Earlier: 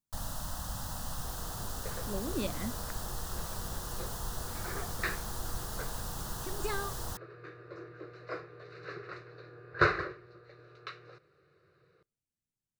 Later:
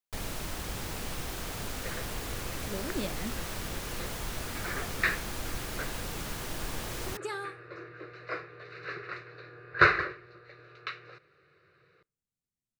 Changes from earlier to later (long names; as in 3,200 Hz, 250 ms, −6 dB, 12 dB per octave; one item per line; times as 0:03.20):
speech: entry +0.60 s
first sound: remove phaser with its sweep stopped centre 950 Hz, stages 4
second sound: add parametric band 2,300 Hz +9.5 dB 1.6 octaves